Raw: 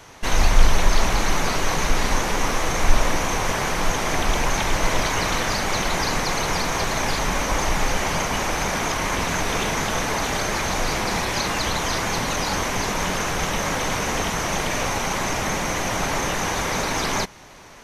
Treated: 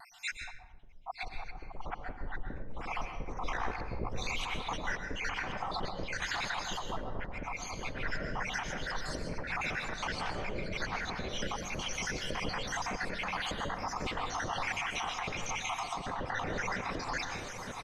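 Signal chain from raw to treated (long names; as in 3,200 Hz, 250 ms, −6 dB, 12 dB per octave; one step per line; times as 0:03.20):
time-frequency cells dropped at random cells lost 76%
repeating echo 911 ms, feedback 45%, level −12.5 dB
treble cut that deepens with the level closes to 360 Hz, closed at −18.5 dBFS
pitch vibrato 0.54 Hz 14 cents
0:03.51–0:04.12: ring modulation 30 Hz
compressor whose output falls as the input rises −32 dBFS, ratio −1
convolution reverb RT60 0.75 s, pre-delay 112 ms, DRR 5.5 dB
level −7 dB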